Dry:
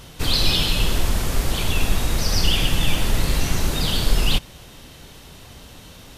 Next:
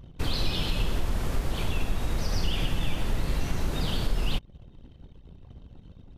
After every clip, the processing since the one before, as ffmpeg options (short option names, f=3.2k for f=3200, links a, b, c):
-af "anlmdn=0.631,highshelf=f=2.9k:g=-10,acompressor=threshold=-25dB:ratio=2,volume=-1dB"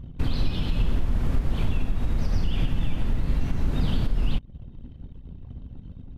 -af "bass=f=250:g=8,treble=f=4k:g=-8,alimiter=limit=-14dB:level=0:latency=1:release=250,equalizer=f=250:t=o:w=0.34:g=5.5"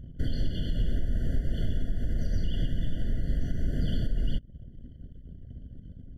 -af "afftfilt=real='re*eq(mod(floor(b*sr/1024/700),2),0)':imag='im*eq(mod(floor(b*sr/1024/700),2),0)':win_size=1024:overlap=0.75,volume=-4dB"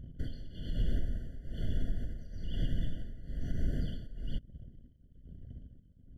-af "tremolo=f=1.1:d=0.82,volume=-3dB"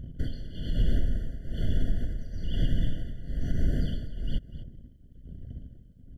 -af "aecho=1:1:247:0.178,volume=6.5dB"